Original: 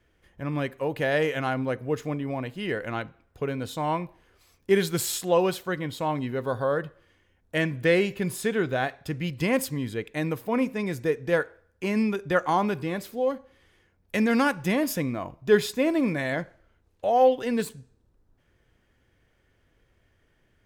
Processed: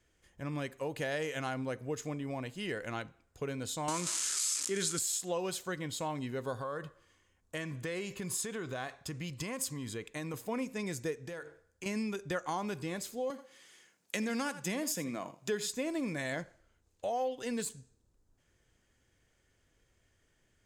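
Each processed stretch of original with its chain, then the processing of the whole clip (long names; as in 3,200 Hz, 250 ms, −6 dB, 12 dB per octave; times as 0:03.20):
0:03.88–0:04.99: spike at every zero crossing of −23.5 dBFS + loudspeaker in its box 140–9,600 Hz, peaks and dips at 270 Hz +7 dB, 740 Hz −7 dB, 1,300 Hz +8 dB + envelope flattener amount 50%
0:06.58–0:10.34: parametric band 1,100 Hz +8.5 dB 0.28 octaves + downward compressor 4 to 1, threshold −28 dBFS
0:11.26–0:11.86: mains-hum notches 50/100/150/200/250/300/350/400/450 Hz + downward compressor 10 to 1, threshold −32 dBFS
0:13.30–0:15.69: high-pass filter 150 Hz 24 dB per octave + single-tap delay 82 ms −16 dB + one half of a high-frequency compander encoder only
whole clip: parametric band 7,100 Hz +14.5 dB 1.2 octaves; notch filter 5,700 Hz, Q 24; downward compressor 4 to 1, threshold −25 dBFS; level −7 dB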